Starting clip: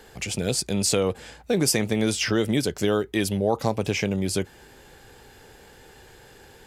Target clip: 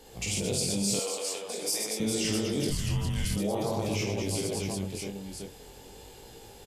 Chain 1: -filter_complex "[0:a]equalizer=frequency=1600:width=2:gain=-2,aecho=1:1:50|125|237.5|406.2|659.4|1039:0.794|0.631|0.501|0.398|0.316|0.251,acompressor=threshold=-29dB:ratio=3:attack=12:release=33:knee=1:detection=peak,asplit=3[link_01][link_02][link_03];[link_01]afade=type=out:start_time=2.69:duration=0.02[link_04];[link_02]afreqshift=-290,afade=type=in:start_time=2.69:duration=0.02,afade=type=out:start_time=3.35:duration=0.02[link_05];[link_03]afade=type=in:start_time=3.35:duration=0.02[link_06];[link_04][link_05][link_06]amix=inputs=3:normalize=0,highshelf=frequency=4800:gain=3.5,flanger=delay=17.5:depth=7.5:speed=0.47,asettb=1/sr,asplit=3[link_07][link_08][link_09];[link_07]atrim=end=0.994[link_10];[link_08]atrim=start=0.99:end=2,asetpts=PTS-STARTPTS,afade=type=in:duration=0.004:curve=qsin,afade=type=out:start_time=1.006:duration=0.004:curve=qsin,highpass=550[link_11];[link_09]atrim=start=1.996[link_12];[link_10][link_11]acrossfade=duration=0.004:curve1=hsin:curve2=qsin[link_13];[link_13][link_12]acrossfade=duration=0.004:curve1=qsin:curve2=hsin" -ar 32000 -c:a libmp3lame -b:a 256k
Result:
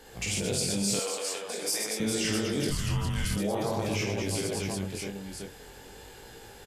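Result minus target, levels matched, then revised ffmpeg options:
2,000 Hz band +3.5 dB
-filter_complex "[0:a]equalizer=frequency=1600:width=2:gain=-12,aecho=1:1:50|125|237.5|406.2|659.4|1039:0.794|0.631|0.501|0.398|0.316|0.251,acompressor=threshold=-29dB:ratio=3:attack=12:release=33:knee=1:detection=peak,asplit=3[link_01][link_02][link_03];[link_01]afade=type=out:start_time=2.69:duration=0.02[link_04];[link_02]afreqshift=-290,afade=type=in:start_time=2.69:duration=0.02,afade=type=out:start_time=3.35:duration=0.02[link_05];[link_03]afade=type=in:start_time=3.35:duration=0.02[link_06];[link_04][link_05][link_06]amix=inputs=3:normalize=0,highshelf=frequency=4800:gain=3.5,flanger=delay=17.5:depth=7.5:speed=0.47,asettb=1/sr,asplit=3[link_07][link_08][link_09];[link_07]atrim=end=0.994[link_10];[link_08]atrim=start=0.99:end=2,asetpts=PTS-STARTPTS,afade=type=in:duration=0.004:curve=qsin,afade=type=out:start_time=1.006:duration=0.004:curve=qsin,highpass=550[link_11];[link_09]atrim=start=1.996[link_12];[link_10][link_11]acrossfade=duration=0.004:curve1=hsin:curve2=qsin[link_13];[link_13][link_12]acrossfade=duration=0.004:curve1=qsin:curve2=hsin" -ar 32000 -c:a libmp3lame -b:a 256k

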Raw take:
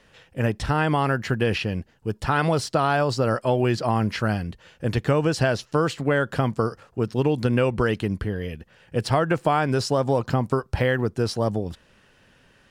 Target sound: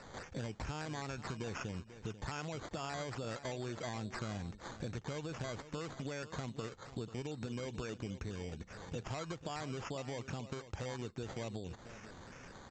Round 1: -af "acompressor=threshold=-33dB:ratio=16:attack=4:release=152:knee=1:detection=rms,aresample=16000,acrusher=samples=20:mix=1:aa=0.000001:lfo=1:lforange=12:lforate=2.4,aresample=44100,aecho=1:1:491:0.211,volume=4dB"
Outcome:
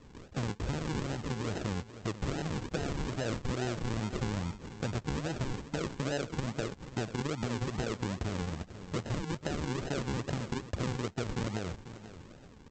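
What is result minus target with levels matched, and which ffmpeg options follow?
downward compressor: peak gain reduction −7.5 dB; sample-and-hold swept by an LFO: distortion +11 dB
-af "acompressor=threshold=-41dB:ratio=16:attack=4:release=152:knee=1:detection=rms,aresample=16000,acrusher=samples=5:mix=1:aa=0.000001:lfo=1:lforange=3:lforate=2.4,aresample=44100,aecho=1:1:491:0.211,volume=4dB"

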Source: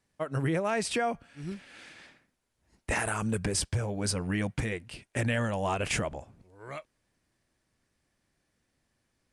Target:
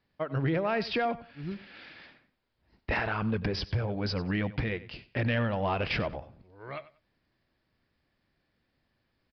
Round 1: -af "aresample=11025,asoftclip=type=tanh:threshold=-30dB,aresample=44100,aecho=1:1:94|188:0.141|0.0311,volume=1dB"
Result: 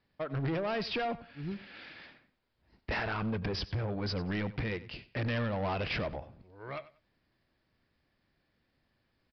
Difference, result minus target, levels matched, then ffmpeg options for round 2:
soft clipping: distortion +15 dB
-af "aresample=11025,asoftclip=type=tanh:threshold=-18.5dB,aresample=44100,aecho=1:1:94|188:0.141|0.0311,volume=1dB"

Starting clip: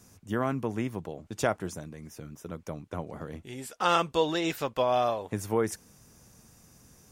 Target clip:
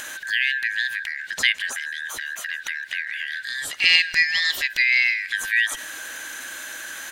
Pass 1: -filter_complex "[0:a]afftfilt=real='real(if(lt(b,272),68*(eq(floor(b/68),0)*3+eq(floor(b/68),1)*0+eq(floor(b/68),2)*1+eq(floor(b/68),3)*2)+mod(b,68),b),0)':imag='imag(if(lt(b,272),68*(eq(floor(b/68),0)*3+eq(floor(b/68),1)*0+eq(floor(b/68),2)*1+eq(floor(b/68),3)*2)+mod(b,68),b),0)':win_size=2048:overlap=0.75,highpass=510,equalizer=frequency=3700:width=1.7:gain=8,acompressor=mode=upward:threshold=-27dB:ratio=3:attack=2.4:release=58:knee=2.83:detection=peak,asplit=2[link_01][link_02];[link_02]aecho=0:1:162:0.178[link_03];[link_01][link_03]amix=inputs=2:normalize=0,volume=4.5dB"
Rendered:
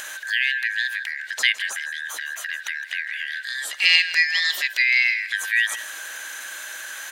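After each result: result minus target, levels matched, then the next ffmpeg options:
echo-to-direct +7 dB; 500 Hz band −2.5 dB
-filter_complex "[0:a]afftfilt=real='real(if(lt(b,272),68*(eq(floor(b/68),0)*3+eq(floor(b/68),1)*0+eq(floor(b/68),2)*1+eq(floor(b/68),3)*2)+mod(b,68),b),0)':imag='imag(if(lt(b,272),68*(eq(floor(b/68),0)*3+eq(floor(b/68),1)*0+eq(floor(b/68),2)*1+eq(floor(b/68),3)*2)+mod(b,68),b),0)':win_size=2048:overlap=0.75,highpass=510,equalizer=frequency=3700:width=1.7:gain=8,acompressor=mode=upward:threshold=-27dB:ratio=3:attack=2.4:release=58:knee=2.83:detection=peak,asplit=2[link_01][link_02];[link_02]aecho=0:1:162:0.0794[link_03];[link_01][link_03]amix=inputs=2:normalize=0,volume=4.5dB"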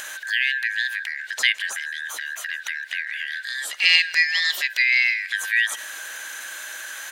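500 Hz band −2.5 dB
-filter_complex "[0:a]afftfilt=real='real(if(lt(b,272),68*(eq(floor(b/68),0)*3+eq(floor(b/68),1)*0+eq(floor(b/68),2)*1+eq(floor(b/68),3)*2)+mod(b,68),b),0)':imag='imag(if(lt(b,272),68*(eq(floor(b/68),0)*3+eq(floor(b/68),1)*0+eq(floor(b/68),2)*1+eq(floor(b/68),3)*2)+mod(b,68),b),0)':win_size=2048:overlap=0.75,equalizer=frequency=3700:width=1.7:gain=8,acompressor=mode=upward:threshold=-27dB:ratio=3:attack=2.4:release=58:knee=2.83:detection=peak,asplit=2[link_01][link_02];[link_02]aecho=0:1:162:0.0794[link_03];[link_01][link_03]amix=inputs=2:normalize=0,volume=4.5dB"

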